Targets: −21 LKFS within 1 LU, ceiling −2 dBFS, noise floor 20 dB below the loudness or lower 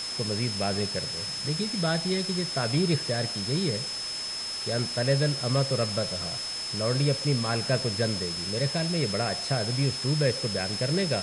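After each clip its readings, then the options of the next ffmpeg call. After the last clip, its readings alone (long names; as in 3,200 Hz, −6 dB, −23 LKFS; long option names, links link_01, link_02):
interfering tone 5,200 Hz; level of the tone −32 dBFS; background noise floor −34 dBFS; target noise floor −47 dBFS; integrated loudness −27.0 LKFS; sample peak −12.0 dBFS; target loudness −21.0 LKFS
→ -af "bandreject=frequency=5200:width=30"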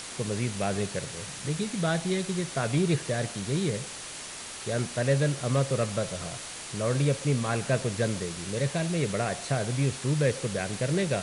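interfering tone none found; background noise floor −40 dBFS; target noise floor −49 dBFS
→ -af "afftdn=noise_reduction=9:noise_floor=-40"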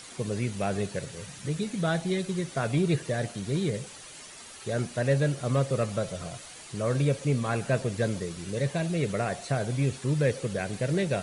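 background noise floor −46 dBFS; target noise floor −49 dBFS
→ -af "afftdn=noise_reduction=6:noise_floor=-46"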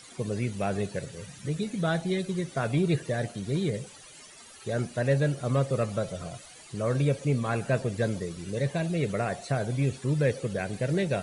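background noise floor −50 dBFS; integrated loudness −29.5 LKFS; sample peak −13.0 dBFS; target loudness −21.0 LKFS
→ -af "volume=8.5dB"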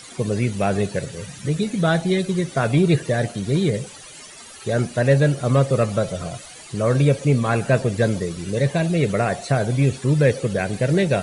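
integrated loudness −21.0 LKFS; sample peak −4.5 dBFS; background noise floor −41 dBFS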